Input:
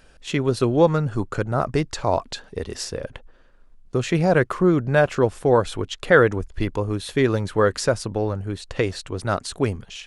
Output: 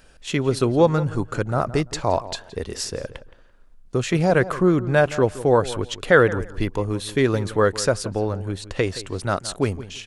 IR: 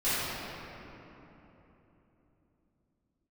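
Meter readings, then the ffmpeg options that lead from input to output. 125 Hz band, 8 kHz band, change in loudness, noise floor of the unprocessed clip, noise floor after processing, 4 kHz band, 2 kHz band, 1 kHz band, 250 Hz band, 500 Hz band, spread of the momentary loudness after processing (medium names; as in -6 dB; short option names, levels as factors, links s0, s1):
0.0 dB, +2.5 dB, 0.0 dB, -51 dBFS, -49 dBFS, +1.5 dB, +0.5 dB, 0.0 dB, 0.0 dB, 0.0 dB, 11 LU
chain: -filter_complex "[0:a]highshelf=f=6800:g=5,asplit=2[s0][s1];[s1]adelay=169,lowpass=f=3500:p=1,volume=0.168,asplit=2[s2][s3];[s3]adelay=169,lowpass=f=3500:p=1,volume=0.21[s4];[s2][s4]amix=inputs=2:normalize=0[s5];[s0][s5]amix=inputs=2:normalize=0"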